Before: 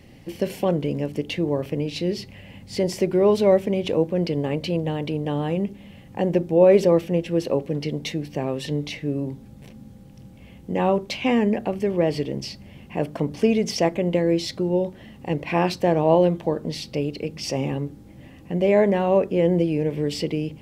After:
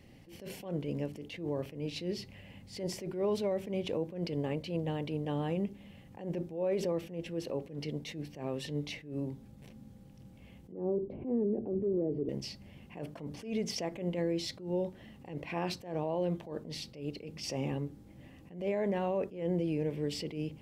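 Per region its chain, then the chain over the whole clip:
10.72–12.29 s: resonant low-pass 390 Hz, resonance Q 2.9 + three bands compressed up and down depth 100%
whole clip: peak limiter -15.5 dBFS; attacks held to a fixed rise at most 120 dB/s; trim -8.5 dB

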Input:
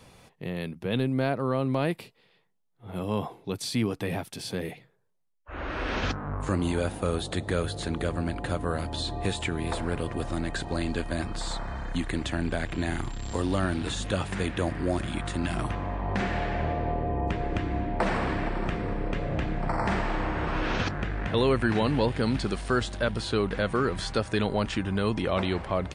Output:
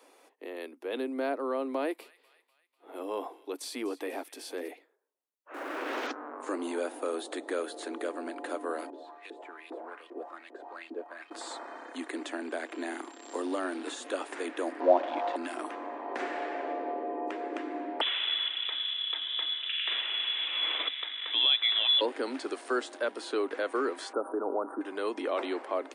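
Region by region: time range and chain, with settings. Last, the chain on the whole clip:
1.60–4.68 s: short-mantissa float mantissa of 8-bit + feedback echo behind a high-pass 247 ms, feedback 52%, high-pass 1.8 kHz, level -17 dB
5.54–6.07 s: jump at every zero crossing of -40 dBFS + loudspeaker Doppler distortion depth 0.4 ms
8.90–11.31 s: companding laws mixed up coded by mu + LFO band-pass saw up 2.5 Hz 290–3500 Hz
14.80–15.36 s: zero-crossing glitches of -25.5 dBFS + low-pass 3.8 kHz 24 dB/octave + high-order bell 710 Hz +13.5 dB 1.2 oct
18.01–22.01 s: high-pass 180 Hz + peaking EQ 290 Hz +14.5 dB 0.64 oct + frequency inversion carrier 3.7 kHz
24.13–24.81 s: Chebyshev band-stop 1.4–9.7 kHz, order 5 + treble shelf 5.3 kHz -9 dB + level flattener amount 50%
whole clip: steep high-pass 270 Hz 72 dB/octave; peaking EQ 3.9 kHz -5.5 dB 1.9 oct; trim -2.5 dB

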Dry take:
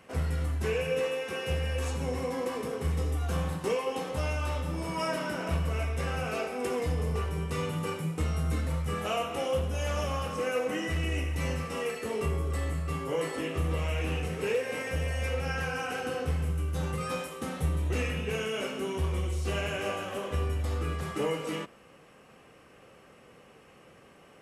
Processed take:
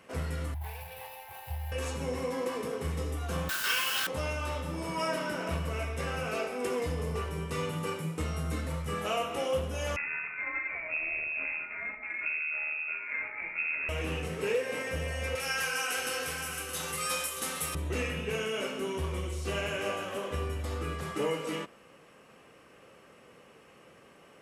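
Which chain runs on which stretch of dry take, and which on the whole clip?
0.54–1.72 s: median filter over 15 samples + FFT filter 120 Hz 0 dB, 190 Hz -29 dB, 500 Hz -23 dB, 840 Hz +8 dB, 1.2 kHz -16 dB, 1.9 kHz -6 dB, 3.4 kHz -5 dB, 6.7 kHz -15 dB, 12 kHz +12 dB
3.49–4.07 s: resonant high-pass 1.5 kHz, resonance Q 11 + high-order bell 3.8 kHz +11.5 dB 1.2 oct + word length cut 6-bit, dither triangular
9.96–13.89 s: valve stage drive 25 dB, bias 0.75 + distance through air 260 m + frequency inversion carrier 2.6 kHz
15.35–17.75 s: tilt EQ +4 dB/octave + delay 622 ms -7.5 dB
whole clip: bass shelf 130 Hz -7 dB; band-stop 760 Hz, Q 19

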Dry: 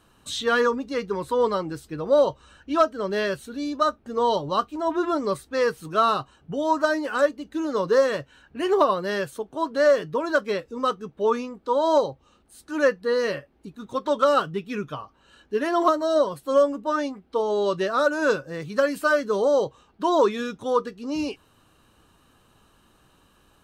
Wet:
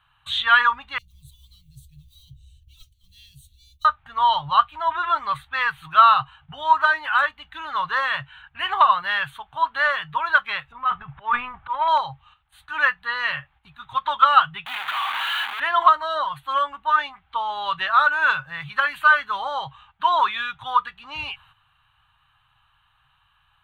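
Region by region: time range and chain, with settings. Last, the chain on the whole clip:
0.98–3.85 s: companding laws mixed up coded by mu + elliptic band-stop 110–5800 Hz, stop band 60 dB
10.72–11.88 s: median filter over 9 samples + distance through air 410 m + transient shaper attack -8 dB, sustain +12 dB
14.66–15.60 s: one-bit comparator + steep high-pass 230 Hz 48 dB/octave
whole clip: band-stop 5.2 kHz, Q 5.9; gate -54 dBFS, range -9 dB; FFT filter 140 Hz 0 dB, 200 Hz -24 dB, 470 Hz -30 dB, 810 Hz +3 dB, 1.3 kHz +6 dB, 3.5 kHz +7 dB, 5.2 kHz -17 dB, 7.7 kHz -16 dB, 11 kHz -10 dB; trim +3 dB

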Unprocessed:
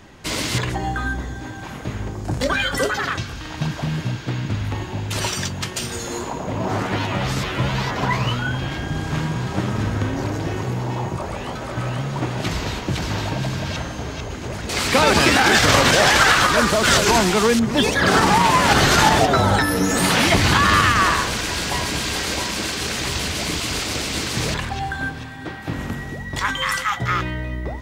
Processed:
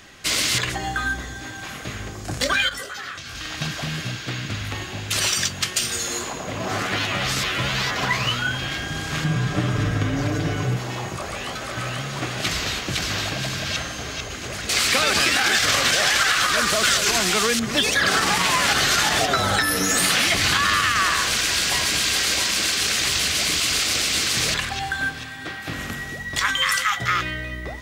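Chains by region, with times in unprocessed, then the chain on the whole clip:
2.69–3.35 s: compression 12:1, threshold -26 dBFS + detune thickener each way 42 cents
9.24–10.77 s: tilt EQ -2 dB/octave + band-stop 4.3 kHz, Q 27 + comb 6.8 ms, depth 71%
whole clip: tilt shelf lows -6.5 dB; band-stop 920 Hz, Q 5.8; compression, threshold -16 dBFS

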